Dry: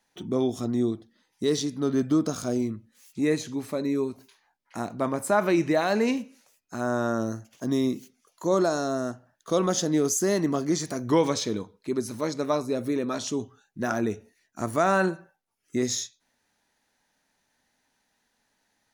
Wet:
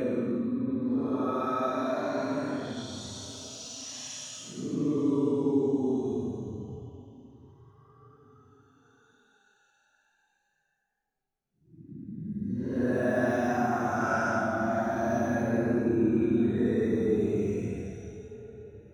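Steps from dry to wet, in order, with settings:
high-shelf EQ 2,300 Hz −10 dB
extreme stretch with random phases 16×, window 0.05 s, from 0:13.02

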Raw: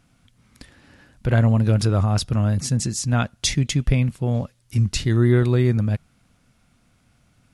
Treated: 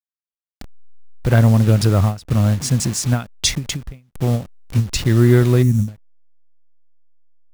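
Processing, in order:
hold until the input has moved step −31.5 dBFS
gain on a spectral selection 0:05.63–0:05.88, 290–5,400 Hz −15 dB
every ending faded ahead of time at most 200 dB per second
level +4.5 dB

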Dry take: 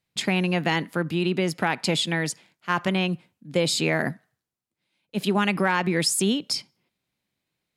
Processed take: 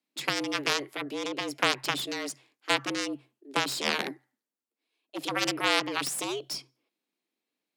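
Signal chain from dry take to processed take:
harmonic generator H 3 −6 dB, 4 −16 dB, 6 −19 dB, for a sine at −9 dBFS
frequency shifter +130 Hz

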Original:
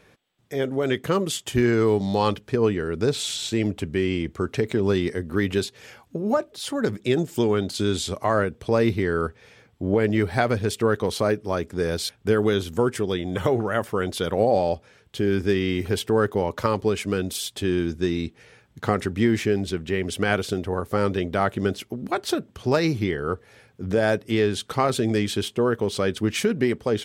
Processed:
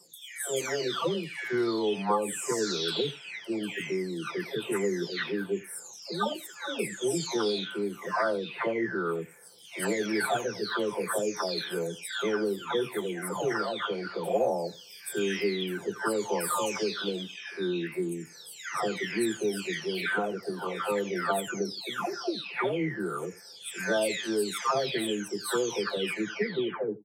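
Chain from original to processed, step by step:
every frequency bin delayed by itself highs early, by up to 904 ms
high-pass filter 150 Hz 24 dB per octave
low-shelf EQ 500 Hz −8 dB
on a send: single-tap delay 85 ms −20.5 dB
on the sum: gain on a spectral selection 0:14.50–0:15.17, 1,200–4,100 Hz −6 dB

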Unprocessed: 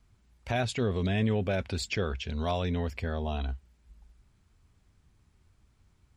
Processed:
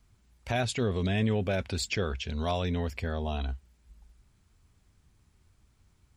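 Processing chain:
high-shelf EQ 5,500 Hz +5.5 dB

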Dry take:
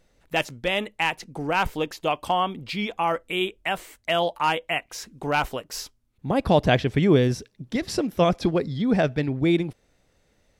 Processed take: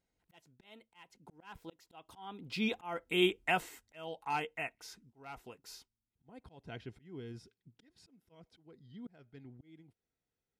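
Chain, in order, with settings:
source passing by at 0:03.11, 22 m/s, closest 8.5 metres
notch comb filter 580 Hz
volume swells 497 ms

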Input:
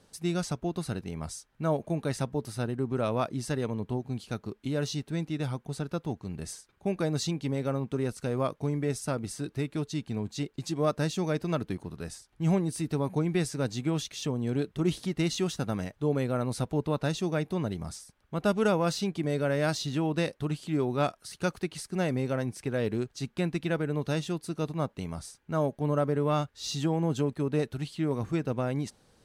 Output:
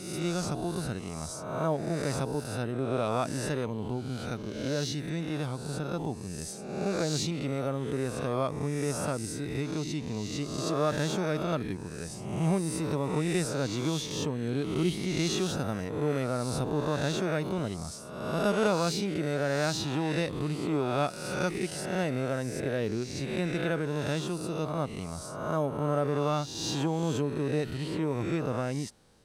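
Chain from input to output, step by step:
peak hold with a rise ahead of every peak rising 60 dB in 1.12 s
level −2.5 dB

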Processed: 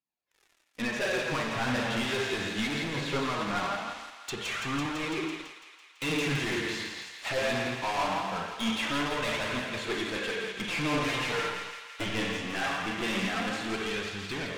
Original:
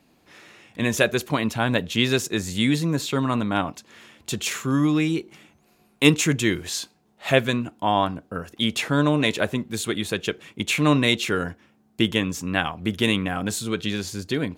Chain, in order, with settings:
0:10.65–0:12.06: lower of the sound and its delayed copy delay 6.7 ms
low-shelf EQ 410 Hz −11 dB
four-comb reverb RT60 1.3 s, combs from 28 ms, DRR 2.5 dB
leveller curve on the samples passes 5
treble cut that deepens with the level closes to 2,500 Hz, closed at −11.5 dBFS
soft clipping −15.5 dBFS, distortion −9 dB
flanger 0.21 Hz, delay 0.7 ms, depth 9.9 ms, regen +34%
feedback echo with a high-pass in the loop 167 ms, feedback 82%, high-pass 650 Hz, level −7 dB
expander for the loud parts 1.5 to 1, over −39 dBFS
level −8 dB

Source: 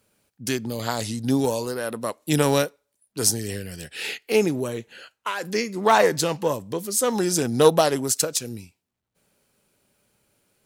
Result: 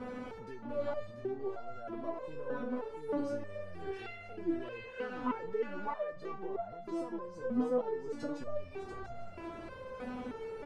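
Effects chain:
converter with a step at zero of −25.5 dBFS
low-pass filter 1,100 Hz 12 dB per octave
downward compressor 5 to 1, threshold −28 dBFS, peak gain reduction 16.5 dB
single-tap delay 689 ms −5 dB
step-sequenced resonator 3.2 Hz 250–690 Hz
level +9 dB

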